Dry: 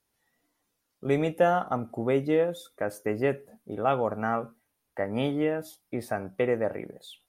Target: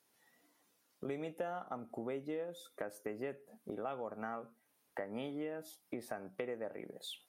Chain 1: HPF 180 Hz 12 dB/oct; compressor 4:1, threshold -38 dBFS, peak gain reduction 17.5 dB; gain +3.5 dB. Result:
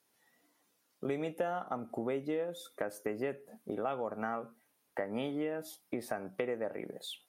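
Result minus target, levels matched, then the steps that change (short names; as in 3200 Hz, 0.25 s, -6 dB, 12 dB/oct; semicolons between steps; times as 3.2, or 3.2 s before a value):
compressor: peak gain reduction -5.5 dB
change: compressor 4:1, threshold -45.5 dBFS, peak gain reduction 23 dB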